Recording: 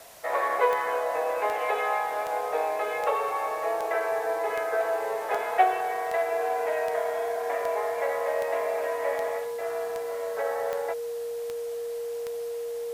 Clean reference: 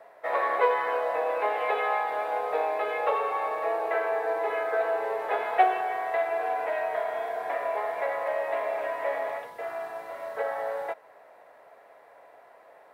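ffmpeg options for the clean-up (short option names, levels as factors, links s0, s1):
-af "adeclick=t=4,bandreject=f=470:w=30,afwtdn=0.0032"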